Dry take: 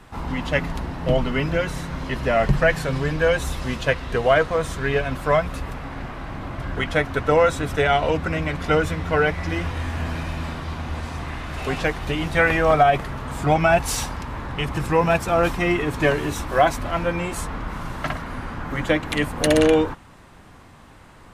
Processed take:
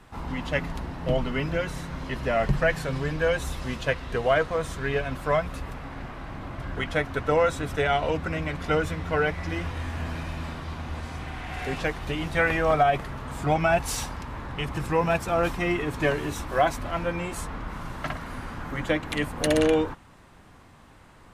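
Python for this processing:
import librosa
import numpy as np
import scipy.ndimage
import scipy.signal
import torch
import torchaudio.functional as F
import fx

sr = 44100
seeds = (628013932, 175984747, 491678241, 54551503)

y = fx.spec_repair(x, sr, seeds[0], start_s=11.1, length_s=0.59, low_hz=620.0, high_hz=3600.0, source='both')
y = fx.high_shelf(y, sr, hz=4800.0, db=7.0, at=(18.21, 18.71))
y = y * 10.0 ** (-5.0 / 20.0)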